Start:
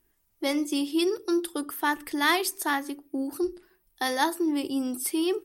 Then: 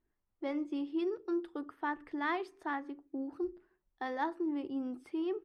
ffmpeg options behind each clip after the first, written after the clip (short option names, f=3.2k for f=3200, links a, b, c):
-af "lowpass=1.7k,volume=-8.5dB"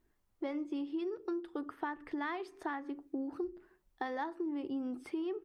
-af "acompressor=threshold=-42dB:ratio=6,volume=7dB"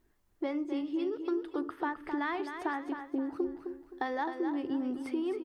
-af "aecho=1:1:261|522|783|1044:0.398|0.131|0.0434|0.0143,volume=4dB"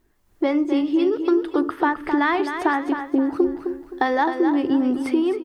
-af "dynaudnorm=f=120:g=5:m=7.5dB,volume=6dB"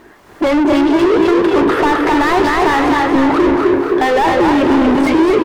-filter_complex "[0:a]asplit=2[a][b];[b]highpass=f=720:p=1,volume=39dB,asoftclip=type=tanh:threshold=-5.5dB[c];[a][c]amix=inputs=2:normalize=0,lowpass=f=1.3k:p=1,volume=-6dB,asplit=7[d][e][f][g][h][i][j];[e]adelay=233,afreqshift=50,volume=-7dB[k];[f]adelay=466,afreqshift=100,volume=-13dB[l];[g]adelay=699,afreqshift=150,volume=-19dB[m];[h]adelay=932,afreqshift=200,volume=-25.1dB[n];[i]adelay=1165,afreqshift=250,volume=-31.1dB[o];[j]adelay=1398,afreqshift=300,volume=-37.1dB[p];[d][k][l][m][n][o][p]amix=inputs=7:normalize=0"